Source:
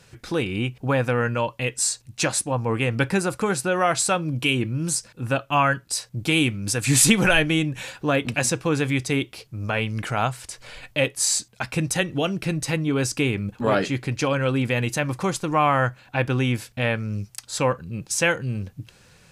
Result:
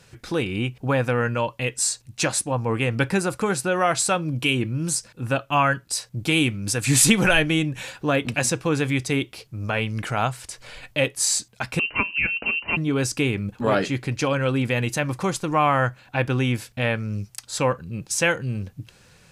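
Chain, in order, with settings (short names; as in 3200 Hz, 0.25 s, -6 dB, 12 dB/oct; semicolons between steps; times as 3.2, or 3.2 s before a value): 11.79–12.77 inverted band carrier 2900 Hz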